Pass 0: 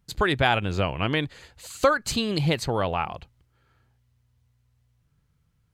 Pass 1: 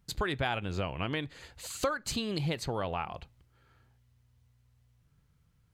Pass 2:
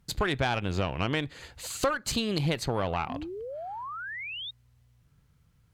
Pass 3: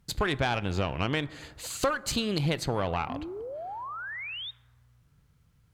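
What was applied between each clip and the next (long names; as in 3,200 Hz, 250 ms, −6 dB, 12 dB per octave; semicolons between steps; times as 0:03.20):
downward compressor 2 to 1, threshold −36 dBFS, peak gain reduction 12 dB; on a send at −20.5 dB: convolution reverb RT60 0.40 s, pre-delay 3 ms
tube saturation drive 23 dB, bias 0.55; sound drawn into the spectrogram rise, 0:03.09–0:04.51, 240–3,800 Hz −44 dBFS; level +6.5 dB
dense smooth reverb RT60 1.8 s, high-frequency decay 0.3×, DRR 18.5 dB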